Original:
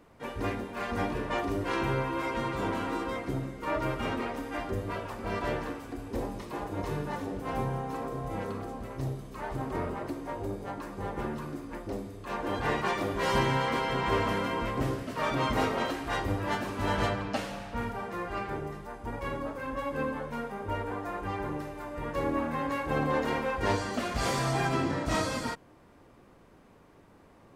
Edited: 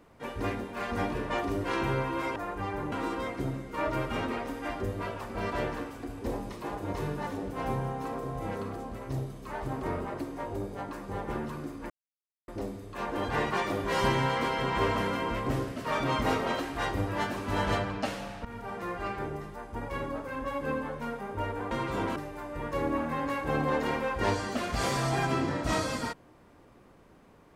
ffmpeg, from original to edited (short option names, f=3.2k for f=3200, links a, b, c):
-filter_complex "[0:a]asplit=7[a][b][c][d][e][f][g];[a]atrim=end=2.362[h];[b]atrim=start=21.018:end=21.582[i];[c]atrim=start=2.808:end=11.79,asetpts=PTS-STARTPTS,afade=t=out:st=8.978:d=0.004:c=hsin,apad=pad_dur=0.58[j];[d]atrim=start=11.79:end=17.76,asetpts=PTS-STARTPTS,afade=t=in:d=0.004:c=hsin,afade=t=out:st=5.966:d=0.004:c=hsin:silence=0.177828[k];[e]atrim=start=17.76:end=21.022,asetpts=PTS-STARTPTS,afade=t=in:d=0.31:silence=0.177828[l];[f]atrim=start=2.358:end=2.812[m];[g]atrim=start=21.578[n];[h][i]acrossfade=d=0.004:c1=hsin:c2=hsin[o];[j][k][l]concat=n=3:v=0:a=1[p];[o][p]acrossfade=d=0.004:c1=hsin:c2=hsin[q];[q][m]acrossfade=d=0.004:c1=hsin:c2=hsin[r];[r][n]acrossfade=d=0.004:c1=hsin:c2=hsin"